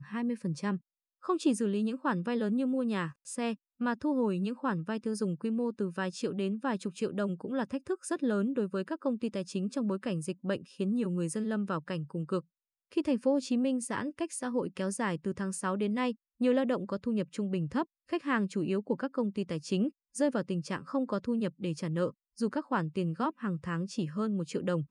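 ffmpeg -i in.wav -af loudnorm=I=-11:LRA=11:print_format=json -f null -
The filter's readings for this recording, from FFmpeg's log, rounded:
"input_i" : "-33.0",
"input_tp" : "-16.9",
"input_lra" : "1.4",
"input_thresh" : "-43.0",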